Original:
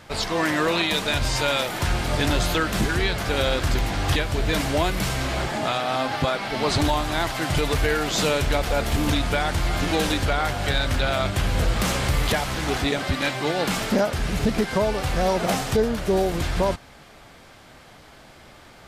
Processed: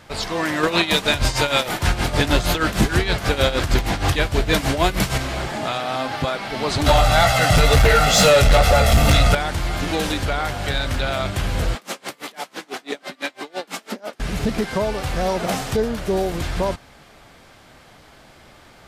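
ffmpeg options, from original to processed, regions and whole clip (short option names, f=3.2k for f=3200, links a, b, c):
-filter_complex "[0:a]asettb=1/sr,asplit=3[a][b][c];[a]atrim=end=0.634[d];[b]atrim=start=0.63:end=5.18,asetpts=PTS-STARTPTS,afade=t=in:d=0.004:c=qsin,afade=t=out:st=4.546:d=0.004:c=qsin,acontrast=86,tremolo=f=6.4:d=0.76[e];[c]atrim=start=5.176[f];[d][e]acrossfade=d=0.004:c1=hsin:c2=qsin[g];[g][f]acrossfade=d=0.004:c1=qsin:c2=hsin,asettb=1/sr,asplit=3[h][i][j];[h]atrim=end=6.864[k];[i]atrim=start=6.86:end=9.35,asetpts=PTS-STARTPTS,afade=t=in:d=0.004:c=qsin,afade=t=out:st=2.486:d=0.004:c=qsin,aecho=1:1:1.5:0.88,atrim=end_sample=109809,flanger=delay=15:depth=3.8:speed=2.1,aeval=exprs='0.376*sin(PI/2*2.24*val(0)/0.376)':c=same[l];[j]atrim=start=9.346[m];[k][l]acrossfade=d=0.004:c1=hsin:c2=qsin[n];[n][m]acrossfade=d=0.004:c1=qsin:c2=hsin,asettb=1/sr,asplit=3[o][p][q];[o]atrim=end=11.754[r];[p]atrim=start=11.75:end=14.2,asetpts=PTS-STARTPTS,afade=t=in:d=0.004:c=qsin,afade=t=out:st=2.446:d=0.004:c=qsin,highpass=f=230:w=0.5412,highpass=f=230:w=1.3066,aeval=exprs='val(0)*pow(10,-30*(0.5-0.5*cos(2*PI*6*n/s))/20)':c=same[s];[q]atrim=start=14.196[t];[r][s]acrossfade=d=0.004:c1=hsin:c2=qsin[u];[u][t]acrossfade=d=0.004:c1=qsin:c2=hsin"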